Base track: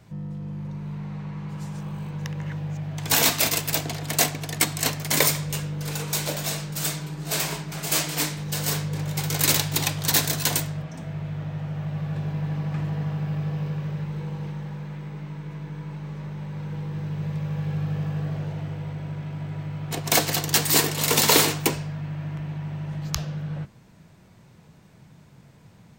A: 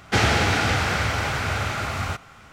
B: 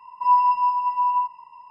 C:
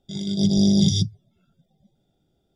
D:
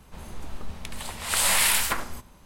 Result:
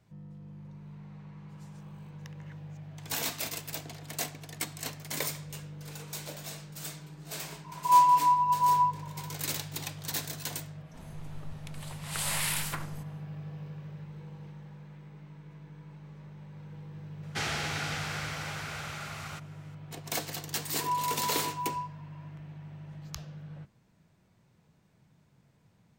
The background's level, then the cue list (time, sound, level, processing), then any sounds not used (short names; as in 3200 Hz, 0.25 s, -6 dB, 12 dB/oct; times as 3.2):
base track -13.5 dB
7.64 add B -2 dB + bell 3700 Hz -12.5 dB 1.1 oct
10.82 add D -10 dB, fades 0.10 s
17.23 add A -14 dB + tilt +2 dB/oct
20.6 add B -11 dB + HPF 1000 Hz
not used: C